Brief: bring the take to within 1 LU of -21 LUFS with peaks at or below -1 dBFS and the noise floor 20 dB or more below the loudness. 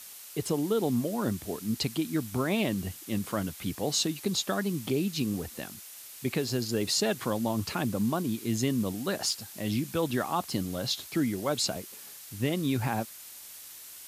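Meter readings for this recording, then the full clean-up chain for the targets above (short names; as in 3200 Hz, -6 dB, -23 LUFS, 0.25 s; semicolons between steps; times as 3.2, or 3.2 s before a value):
noise floor -47 dBFS; noise floor target -51 dBFS; loudness -30.5 LUFS; peak -15.5 dBFS; loudness target -21.0 LUFS
-> noise print and reduce 6 dB; gain +9.5 dB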